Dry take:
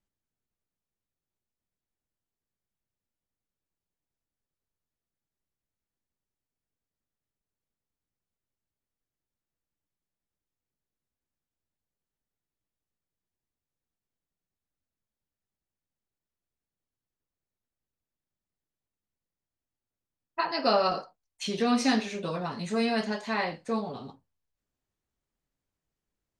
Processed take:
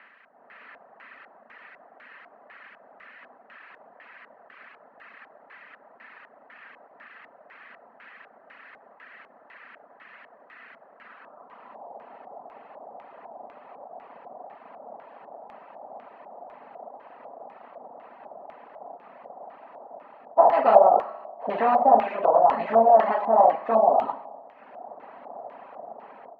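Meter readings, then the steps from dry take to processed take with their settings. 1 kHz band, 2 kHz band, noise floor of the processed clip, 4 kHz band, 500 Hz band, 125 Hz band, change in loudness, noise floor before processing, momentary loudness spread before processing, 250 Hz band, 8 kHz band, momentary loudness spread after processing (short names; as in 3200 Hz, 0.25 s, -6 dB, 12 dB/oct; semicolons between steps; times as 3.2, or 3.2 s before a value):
+14.0 dB, -0.5 dB, -56 dBFS, under -10 dB, +12.0 dB, n/a, +9.0 dB, under -85 dBFS, 13 LU, -5.5 dB, under -25 dB, 15 LU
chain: per-bin compression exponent 0.4; high shelf 3100 Hz -9 dB; Schroeder reverb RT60 1.6 s, combs from 28 ms, DRR 6.5 dB; AGC gain up to 9.5 dB; band-pass sweep 1700 Hz -> 820 Hz, 10.98–11.97; reverb removal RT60 1.5 s; LFO low-pass square 2 Hz 710–2500 Hz; gain +1 dB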